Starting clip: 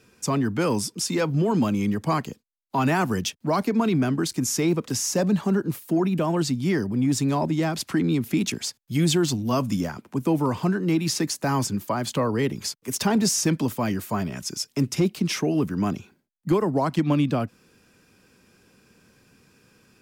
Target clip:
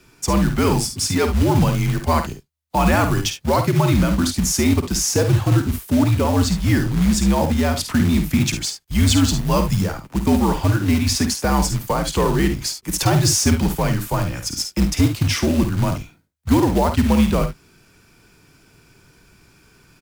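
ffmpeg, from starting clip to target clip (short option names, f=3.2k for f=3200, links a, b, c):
-af "afreqshift=-77,acrusher=bits=4:mode=log:mix=0:aa=0.000001,aecho=1:1:51|71:0.376|0.251,volume=5dB"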